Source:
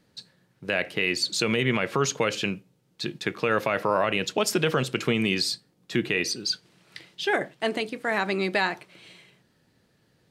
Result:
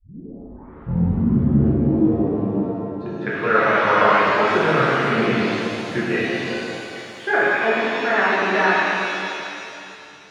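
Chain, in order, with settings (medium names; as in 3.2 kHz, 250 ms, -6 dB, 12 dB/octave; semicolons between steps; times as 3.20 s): tape start-up on the opening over 2.53 s; low-pass sweep 270 Hz -> 1.5 kHz, 2.52–3.26 s; pitch-shifted reverb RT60 2.7 s, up +7 st, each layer -8 dB, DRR -8 dB; trim -3 dB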